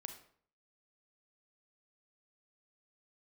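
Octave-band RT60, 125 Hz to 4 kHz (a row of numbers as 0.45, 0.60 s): 0.60, 0.60, 0.55, 0.55, 0.45, 0.40 s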